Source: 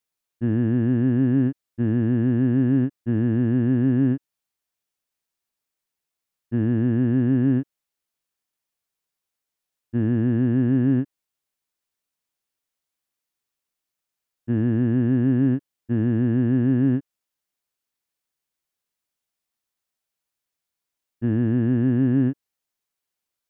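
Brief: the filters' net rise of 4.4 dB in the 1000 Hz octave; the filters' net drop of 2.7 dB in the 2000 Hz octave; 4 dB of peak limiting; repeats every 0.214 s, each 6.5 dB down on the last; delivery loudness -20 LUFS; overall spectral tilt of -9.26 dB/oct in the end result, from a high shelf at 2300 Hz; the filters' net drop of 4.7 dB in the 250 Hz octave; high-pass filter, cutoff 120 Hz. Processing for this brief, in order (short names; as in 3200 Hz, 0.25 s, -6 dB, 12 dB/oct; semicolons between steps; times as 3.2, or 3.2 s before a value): HPF 120 Hz; bell 250 Hz -5 dB; bell 1000 Hz +8 dB; bell 2000 Hz -5 dB; high shelf 2300 Hz -3.5 dB; limiter -19 dBFS; feedback echo 0.214 s, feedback 47%, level -6.5 dB; gain +7.5 dB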